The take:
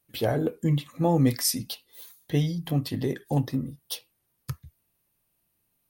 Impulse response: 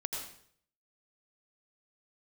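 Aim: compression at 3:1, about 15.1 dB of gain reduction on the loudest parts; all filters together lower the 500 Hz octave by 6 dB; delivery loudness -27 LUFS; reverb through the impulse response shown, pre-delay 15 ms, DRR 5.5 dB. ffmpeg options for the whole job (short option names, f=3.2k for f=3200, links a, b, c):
-filter_complex "[0:a]equalizer=f=500:t=o:g=-7.5,acompressor=threshold=-41dB:ratio=3,asplit=2[a][b];[1:a]atrim=start_sample=2205,adelay=15[c];[b][c]afir=irnorm=-1:irlink=0,volume=-7.5dB[d];[a][d]amix=inputs=2:normalize=0,volume=14dB"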